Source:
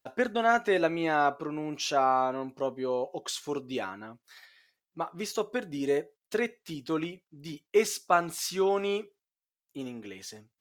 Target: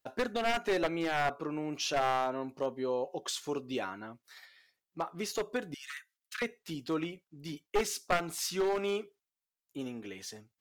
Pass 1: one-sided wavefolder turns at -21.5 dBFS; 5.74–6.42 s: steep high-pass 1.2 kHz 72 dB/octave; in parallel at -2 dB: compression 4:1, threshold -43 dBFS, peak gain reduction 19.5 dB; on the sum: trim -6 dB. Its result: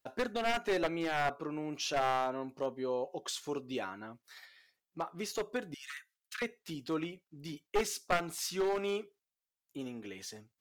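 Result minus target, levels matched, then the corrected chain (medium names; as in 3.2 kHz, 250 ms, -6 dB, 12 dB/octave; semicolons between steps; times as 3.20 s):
compression: peak gain reduction +8.5 dB
one-sided wavefolder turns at -21.5 dBFS; 5.74–6.42 s: steep high-pass 1.2 kHz 72 dB/octave; in parallel at -2 dB: compression 4:1, threshold -31.5 dBFS, peak gain reduction 11 dB; on the sum: trim -6 dB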